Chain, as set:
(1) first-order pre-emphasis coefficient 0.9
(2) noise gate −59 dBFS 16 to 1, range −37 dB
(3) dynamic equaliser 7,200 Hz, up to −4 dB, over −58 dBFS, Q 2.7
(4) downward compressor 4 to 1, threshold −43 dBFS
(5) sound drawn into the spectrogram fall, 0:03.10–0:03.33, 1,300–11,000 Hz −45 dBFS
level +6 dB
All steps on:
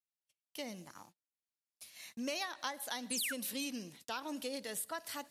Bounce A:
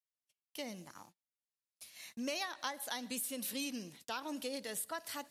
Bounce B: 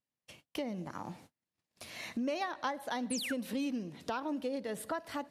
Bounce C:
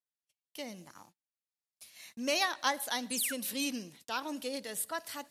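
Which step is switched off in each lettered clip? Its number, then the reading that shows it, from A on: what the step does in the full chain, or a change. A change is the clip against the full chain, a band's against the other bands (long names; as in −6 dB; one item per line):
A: 5, change in momentary loudness spread −2 LU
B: 1, 8 kHz band −10.5 dB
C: 4, average gain reduction 3.0 dB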